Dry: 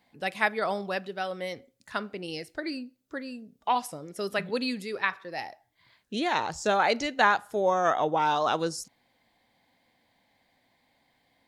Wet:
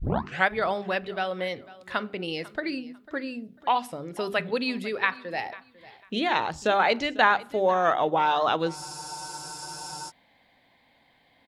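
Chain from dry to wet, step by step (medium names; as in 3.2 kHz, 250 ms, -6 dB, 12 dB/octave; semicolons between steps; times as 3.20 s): tape start-up on the opening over 0.49 s; hum notches 50/100/150/200/250/300/350/400 Hz; in parallel at 0 dB: compression, threshold -36 dBFS, peak gain reduction 18 dB; on the sum: short-mantissa float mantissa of 6-bit; resonant high shelf 4.5 kHz -7.5 dB, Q 1.5; on a send: feedback delay 497 ms, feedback 25%, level -19.5 dB; on the sum: spectral freeze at 8.77 s, 1.32 s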